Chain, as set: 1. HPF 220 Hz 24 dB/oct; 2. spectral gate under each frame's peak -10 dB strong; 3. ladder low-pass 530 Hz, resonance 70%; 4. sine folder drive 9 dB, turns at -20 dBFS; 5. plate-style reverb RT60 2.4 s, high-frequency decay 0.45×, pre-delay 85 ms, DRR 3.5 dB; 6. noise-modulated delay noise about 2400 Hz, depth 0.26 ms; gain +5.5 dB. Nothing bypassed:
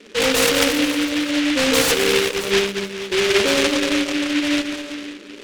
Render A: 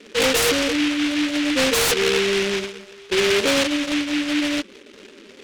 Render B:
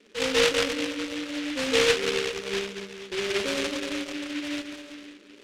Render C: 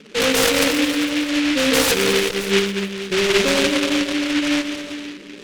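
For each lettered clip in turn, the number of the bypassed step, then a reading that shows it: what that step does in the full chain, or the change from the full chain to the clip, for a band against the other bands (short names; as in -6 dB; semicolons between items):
5, crest factor change -6.5 dB; 4, distortion -1 dB; 1, 125 Hz band +3.0 dB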